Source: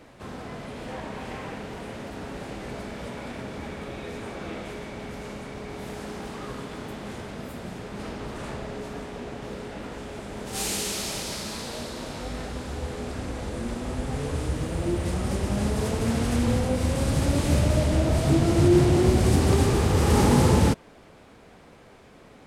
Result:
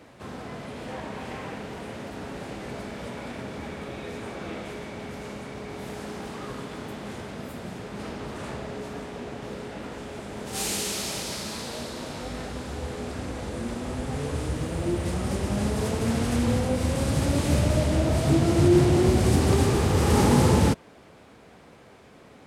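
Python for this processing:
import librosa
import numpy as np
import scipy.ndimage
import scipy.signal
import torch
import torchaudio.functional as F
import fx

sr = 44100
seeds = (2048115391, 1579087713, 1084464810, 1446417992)

y = scipy.signal.sosfilt(scipy.signal.butter(2, 61.0, 'highpass', fs=sr, output='sos'), x)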